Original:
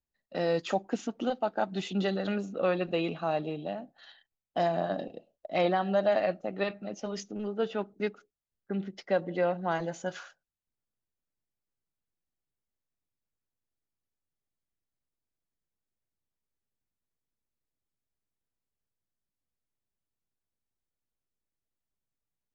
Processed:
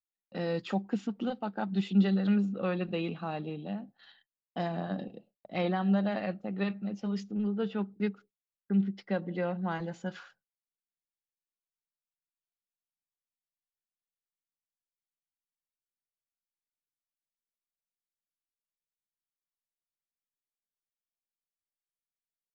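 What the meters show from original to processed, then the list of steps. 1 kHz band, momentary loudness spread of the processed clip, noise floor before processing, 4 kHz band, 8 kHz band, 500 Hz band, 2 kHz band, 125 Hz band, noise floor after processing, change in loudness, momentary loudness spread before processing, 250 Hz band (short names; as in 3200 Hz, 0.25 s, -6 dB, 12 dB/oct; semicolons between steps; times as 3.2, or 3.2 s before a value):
-5.5 dB, 11 LU, under -85 dBFS, -4.0 dB, n/a, -6.5 dB, -3.5 dB, +5.0 dB, under -85 dBFS, -1.0 dB, 11 LU, +4.5 dB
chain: gate with hold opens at -48 dBFS; thirty-one-band EQ 125 Hz +8 dB, 200 Hz +11 dB, 630 Hz -8 dB, 6300 Hz -11 dB; gain -3.5 dB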